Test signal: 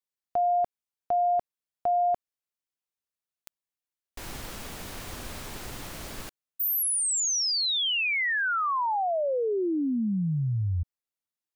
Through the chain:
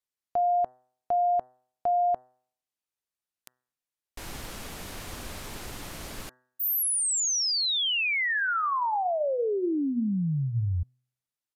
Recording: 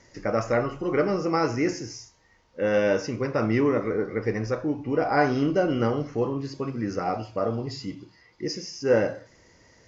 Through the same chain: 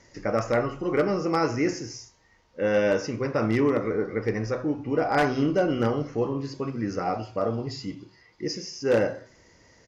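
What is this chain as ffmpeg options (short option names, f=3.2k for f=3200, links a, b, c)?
-af "bandreject=f=126.3:t=h:w=4,bandreject=f=252.6:t=h:w=4,bandreject=f=378.9:t=h:w=4,bandreject=f=505.2:t=h:w=4,bandreject=f=631.5:t=h:w=4,bandreject=f=757.8:t=h:w=4,bandreject=f=884.1:t=h:w=4,bandreject=f=1.0104k:t=h:w=4,bandreject=f=1.1367k:t=h:w=4,bandreject=f=1.263k:t=h:w=4,bandreject=f=1.3893k:t=h:w=4,bandreject=f=1.5156k:t=h:w=4,bandreject=f=1.6419k:t=h:w=4,bandreject=f=1.7682k:t=h:w=4,bandreject=f=1.8945k:t=h:w=4,aeval=exprs='0.2*(abs(mod(val(0)/0.2+3,4)-2)-1)':c=same,aresample=32000,aresample=44100"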